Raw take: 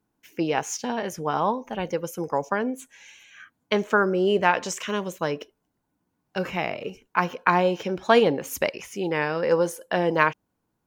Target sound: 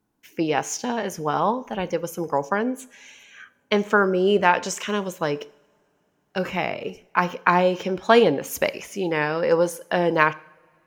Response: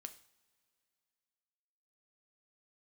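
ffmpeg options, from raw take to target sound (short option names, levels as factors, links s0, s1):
-filter_complex "[0:a]asplit=2[s0][s1];[1:a]atrim=start_sample=2205,asetrate=32634,aresample=44100[s2];[s1][s2]afir=irnorm=-1:irlink=0,volume=0.708[s3];[s0][s3]amix=inputs=2:normalize=0,volume=0.891"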